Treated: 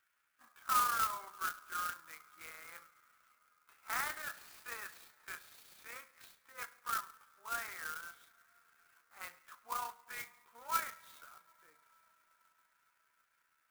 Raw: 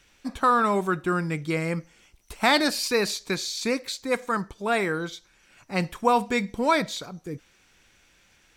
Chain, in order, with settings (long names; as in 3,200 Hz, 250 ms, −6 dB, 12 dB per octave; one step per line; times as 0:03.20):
four-pole ladder band-pass 1,500 Hz, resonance 60%
coupled-rooms reverb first 0.37 s, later 4.3 s, from −18 dB, DRR 14 dB
time stretch by overlap-add 1.6×, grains 69 ms
converter with an unsteady clock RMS 0.052 ms
level −5 dB